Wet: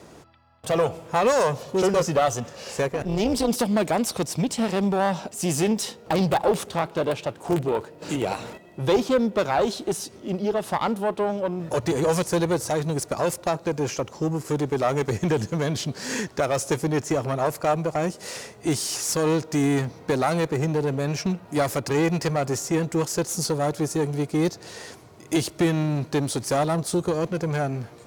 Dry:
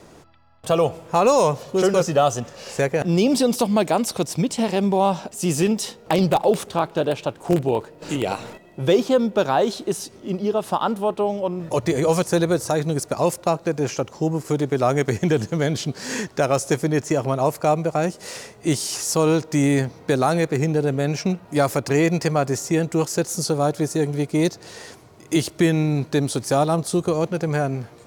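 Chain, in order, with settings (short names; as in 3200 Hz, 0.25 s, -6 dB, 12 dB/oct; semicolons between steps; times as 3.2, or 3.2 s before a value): one diode to ground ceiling -20 dBFS; HPF 45 Hz; 2.88–3.49 AM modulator 210 Hz, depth 50%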